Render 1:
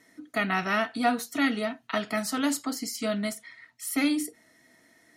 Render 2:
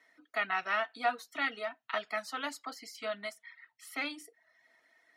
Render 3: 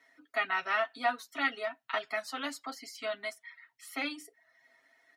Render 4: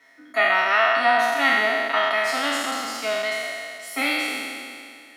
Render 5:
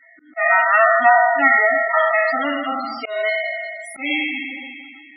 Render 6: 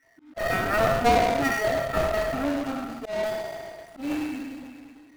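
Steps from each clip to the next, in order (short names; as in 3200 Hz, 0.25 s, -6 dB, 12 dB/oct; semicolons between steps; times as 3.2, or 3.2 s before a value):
reverb removal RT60 0.59 s; three-band isolator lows -20 dB, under 530 Hz, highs -15 dB, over 4200 Hz; gain -3 dB
comb 7.4 ms, depth 66%
spectral trails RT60 2.31 s; gain +7.5 dB
loudest bins only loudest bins 16; auto swell 0.169 s; gain +6.5 dB
median filter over 41 samples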